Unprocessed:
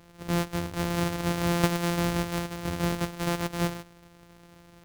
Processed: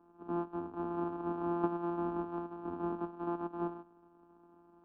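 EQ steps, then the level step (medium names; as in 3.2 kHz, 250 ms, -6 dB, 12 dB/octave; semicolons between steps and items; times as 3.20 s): three-band isolator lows -20 dB, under 170 Hz, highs -24 dB, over 2.2 kHz; tape spacing loss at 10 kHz 44 dB; static phaser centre 540 Hz, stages 6; 0.0 dB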